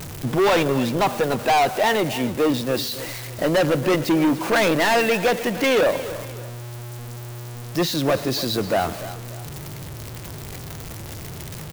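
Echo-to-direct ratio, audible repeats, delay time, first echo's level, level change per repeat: −14.5 dB, 2, 293 ms, −15.0 dB, −8.0 dB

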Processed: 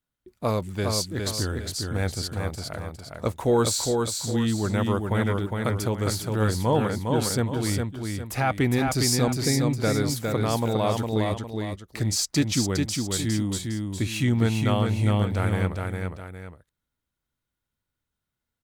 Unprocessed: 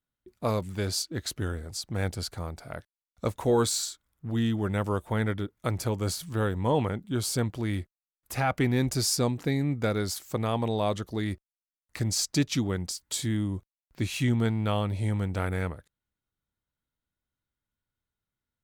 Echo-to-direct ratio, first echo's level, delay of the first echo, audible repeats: −3.5 dB, −4.0 dB, 408 ms, 2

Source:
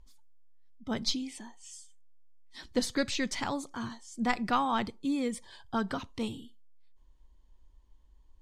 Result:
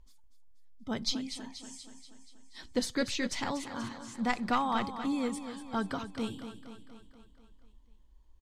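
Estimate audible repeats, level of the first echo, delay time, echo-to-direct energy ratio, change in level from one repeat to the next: 6, −10.5 dB, 240 ms, −8.5 dB, −4.5 dB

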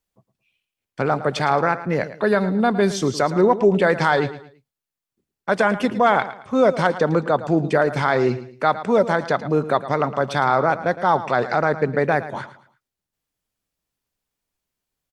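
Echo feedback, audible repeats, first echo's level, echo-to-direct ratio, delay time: 33%, 3, −14.0 dB, −13.5 dB, 111 ms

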